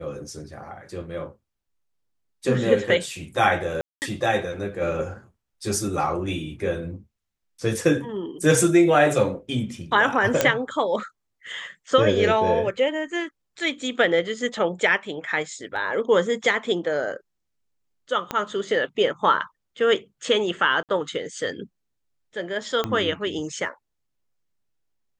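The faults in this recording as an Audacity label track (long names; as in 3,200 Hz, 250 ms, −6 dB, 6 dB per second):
3.810000	4.020000	drop-out 209 ms
10.410000	10.410000	click −3 dBFS
15.760000	15.760000	drop-out 3.5 ms
18.310000	18.310000	click −12 dBFS
20.830000	20.890000	drop-out 58 ms
22.840000	22.840000	click −11 dBFS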